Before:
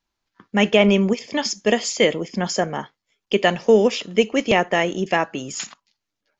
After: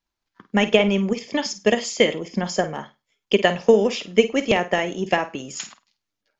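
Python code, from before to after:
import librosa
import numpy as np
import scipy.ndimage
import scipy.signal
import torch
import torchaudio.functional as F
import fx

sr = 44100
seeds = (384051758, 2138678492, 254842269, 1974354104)

p1 = fx.transient(x, sr, attack_db=7, sustain_db=3)
p2 = p1 + fx.room_flutter(p1, sr, wall_m=8.7, rt60_s=0.24, dry=0)
y = p2 * librosa.db_to_amplitude(-5.0)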